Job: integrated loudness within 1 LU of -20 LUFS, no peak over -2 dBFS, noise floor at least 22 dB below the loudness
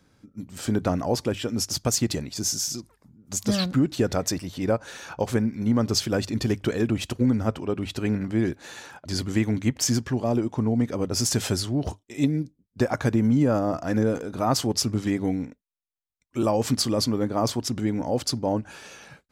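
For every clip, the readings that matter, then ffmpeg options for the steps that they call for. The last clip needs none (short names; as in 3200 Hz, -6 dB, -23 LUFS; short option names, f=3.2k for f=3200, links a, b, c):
loudness -25.5 LUFS; peak -9.5 dBFS; loudness target -20.0 LUFS
-> -af "volume=5.5dB"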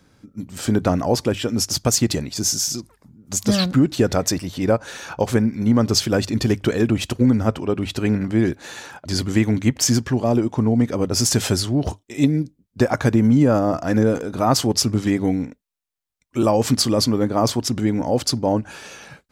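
loudness -20.0 LUFS; peak -4.0 dBFS; noise floor -69 dBFS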